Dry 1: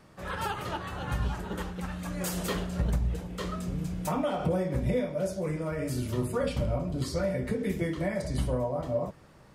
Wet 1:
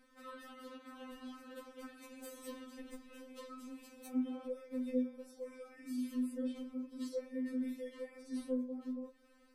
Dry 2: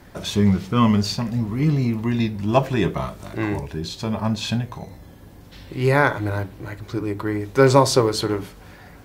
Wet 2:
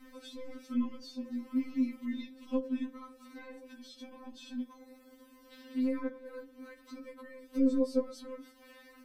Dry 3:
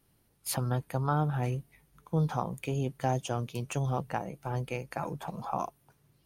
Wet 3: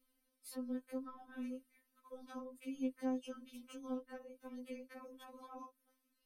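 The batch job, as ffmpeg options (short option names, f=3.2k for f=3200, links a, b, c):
-filter_complex "[0:a]aeval=exprs='0.891*(cos(1*acos(clip(val(0)/0.891,-1,1)))-cos(1*PI/2))+0.0708*(cos(2*acos(clip(val(0)/0.891,-1,1)))-cos(2*PI/2))':c=same,equalizer=f=780:t=o:w=0.26:g=-10,acrossover=split=500[a][b];[b]acompressor=threshold=-44dB:ratio=4[c];[a][c]amix=inputs=2:normalize=0,bandreject=f=6.8k:w=9,afftfilt=real='re*3.46*eq(mod(b,12),0)':imag='im*3.46*eq(mod(b,12),0)':win_size=2048:overlap=0.75,volume=-6.5dB"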